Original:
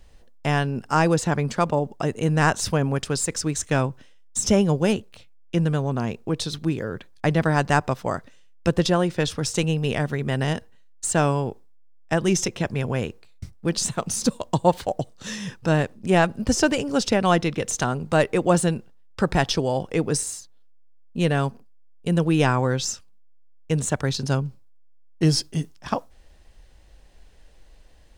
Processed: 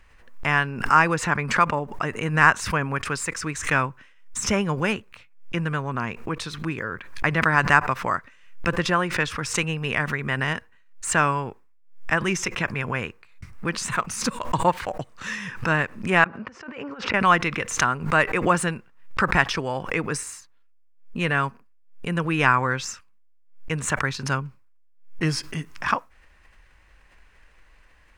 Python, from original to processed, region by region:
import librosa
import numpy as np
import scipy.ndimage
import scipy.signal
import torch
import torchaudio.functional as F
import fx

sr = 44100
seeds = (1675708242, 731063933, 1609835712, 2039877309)

y = fx.chain(x, sr, fx.highpass(hz=420.0, slope=6),
    fx.over_compress(threshold_db=-30.0, ratio=-0.5),
    fx.spacing_loss(db_at_10k=35), at=(16.24, 17.14))
y = fx.band_shelf(y, sr, hz=1600.0, db=13.0, octaves=1.7)
y = fx.pre_swell(y, sr, db_per_s=110.0)
y = F.gain(torch.from_numpy(y), -5.5).numpy()